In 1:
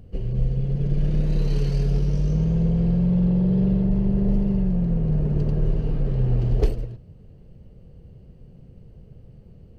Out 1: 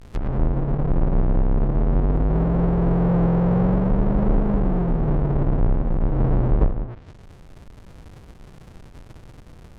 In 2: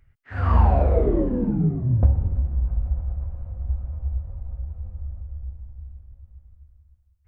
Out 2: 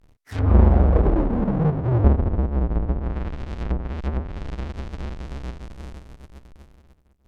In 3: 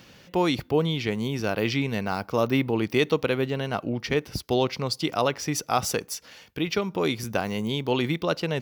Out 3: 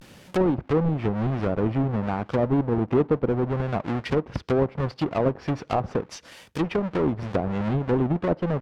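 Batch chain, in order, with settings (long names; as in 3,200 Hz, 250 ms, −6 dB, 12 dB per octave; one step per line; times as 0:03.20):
each half-wave held at its own peak
pitch vibrato 0.51 Hz 77 cents
treble cut that deepens with the level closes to 830 Hz, closed at −17.5 dBFS
level −2 dB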